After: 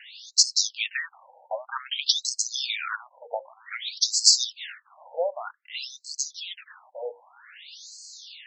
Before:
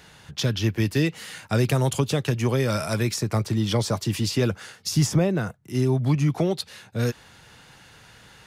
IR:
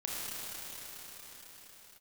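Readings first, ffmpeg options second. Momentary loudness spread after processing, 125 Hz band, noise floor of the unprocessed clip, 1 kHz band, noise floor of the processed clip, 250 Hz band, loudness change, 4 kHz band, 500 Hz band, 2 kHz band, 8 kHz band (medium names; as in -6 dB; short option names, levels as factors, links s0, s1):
22 LU, under -40 dB, -51 dBFS, -3.5 dB, -64 dBFS, under -40 dB, -0.5 dB, +8.0 dB, -8.5 dB, -1.0 dB, +8.5 dB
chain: -af "bandreject=f=60:t=h:w=6,bandreject=f=120:t=h:w=6,bandreject=f=180:t=h:w=6,bandreject=f=240:t=h:w=6,bandreject=f=300:t=h:w=6,bandreject=f=360:t=h:w=6,bandreject=f=420:t=h:w=6,bandreject=f=480:t=h:w=6,bandreject=f=540:t=h:w=6,crystalizer=i=7:c=0,afftfilt=real='re*between(b*sr/1024,660*pow(5900/660,0.5+0.5*sin(2*PI*0.53*pts/sr))/1.41,660*pow(5900/660,0.5+0.5*sin(2*PI*0.53*pts/sr))*1.41)':imag='im*between(b*sr/1024,660*pow(5900/660,0.5+0.5*sin(2*PI*0.53*pts/sr))/1.41,660*pow(5900/660,0.5+0.5*sin(2*PI*0.53*pts/sr))*1.41)':win_size=1024:overlap=0.75"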